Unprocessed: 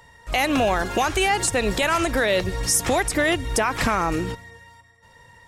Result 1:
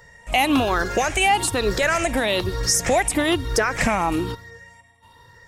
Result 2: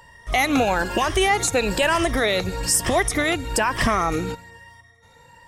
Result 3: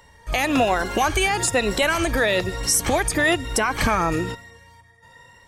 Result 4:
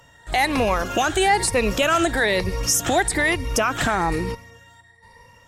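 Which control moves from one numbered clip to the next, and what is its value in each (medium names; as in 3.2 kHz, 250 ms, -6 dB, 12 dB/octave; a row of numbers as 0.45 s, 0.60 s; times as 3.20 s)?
drifting ripple filter, ripples per octave: 0.56, 1.3, 2.1, 0.88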